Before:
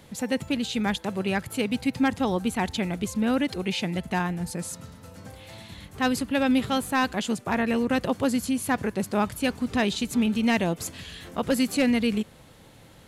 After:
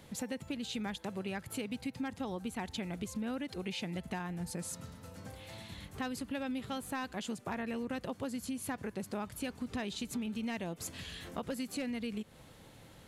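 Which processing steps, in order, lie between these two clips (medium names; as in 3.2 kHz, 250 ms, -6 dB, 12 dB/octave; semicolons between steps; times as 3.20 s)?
compression 6:1, threshold -31 dBFS, peak gain reduction 12 dB; trim -4.5 dB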